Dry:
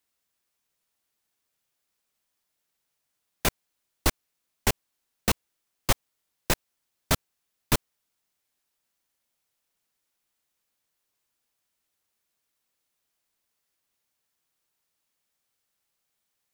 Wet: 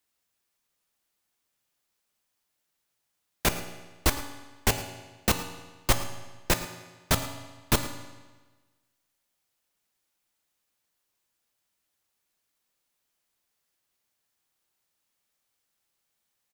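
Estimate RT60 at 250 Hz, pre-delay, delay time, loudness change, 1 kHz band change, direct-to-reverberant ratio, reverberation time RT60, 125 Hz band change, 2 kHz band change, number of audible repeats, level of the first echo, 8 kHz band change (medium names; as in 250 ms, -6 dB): 1.3 s, 3 ms, 110 ms, 0.0 dB, +1.0 dB, 6.5 dB, 1.3 s, +1.0 dB, +1.0 dB, 1, -16.5 dB, +0.5 dB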